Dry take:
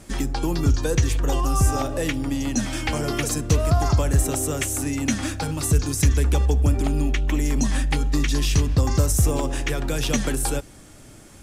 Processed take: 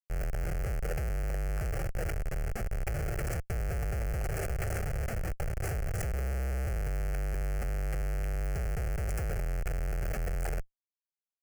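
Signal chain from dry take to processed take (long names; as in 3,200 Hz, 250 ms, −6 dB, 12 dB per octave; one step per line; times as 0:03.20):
comparator with hysteresis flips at −20.5 dBFS
phaser with its sweep stopped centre 1,000 Hz, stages 6
level −8.5 dB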